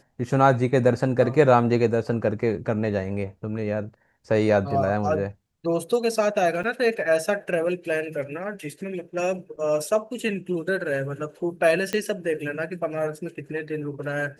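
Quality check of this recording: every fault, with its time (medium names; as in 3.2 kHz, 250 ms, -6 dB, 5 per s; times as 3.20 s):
6.63–6.64 s: dropout 6.7 ms
11.93 s: pop -12 dBFS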